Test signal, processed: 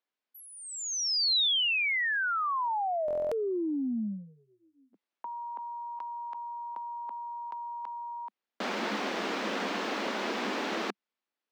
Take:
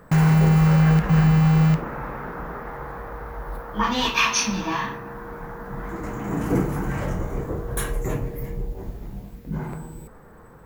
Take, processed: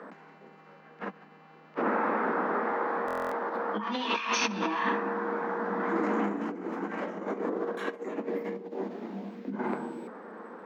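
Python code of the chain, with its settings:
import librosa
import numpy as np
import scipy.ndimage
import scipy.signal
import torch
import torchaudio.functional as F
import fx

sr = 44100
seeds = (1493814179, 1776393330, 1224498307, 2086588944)

y = fx.air_absorb(x, sr, metres=200.0)
y = fx.over_compress(y, sr, threshold_db=-31.0, ratio=-1.0)
y = scipy.signal.sosfilt(scipy.signal.butter(12, 200.0, 'highpass', fs=sr, output='sos'), y)
y = fx.buffer_glitch(y, sr, at_s=(3.06,), block=1024, repeats=10)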